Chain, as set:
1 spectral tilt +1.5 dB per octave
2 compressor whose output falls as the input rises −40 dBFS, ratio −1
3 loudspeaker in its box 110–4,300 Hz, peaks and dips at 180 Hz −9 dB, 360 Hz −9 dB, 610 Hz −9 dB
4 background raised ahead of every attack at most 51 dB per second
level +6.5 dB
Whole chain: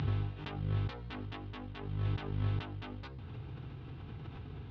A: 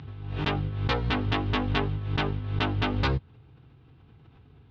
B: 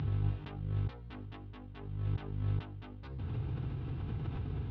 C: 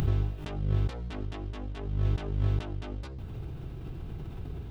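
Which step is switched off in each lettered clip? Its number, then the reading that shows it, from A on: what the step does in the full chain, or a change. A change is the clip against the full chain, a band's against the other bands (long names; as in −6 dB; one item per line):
2, change in crest factor +7.0 dB
1, 125 Hz band +5.0 dB
3, 500 Hz band +4.5 dB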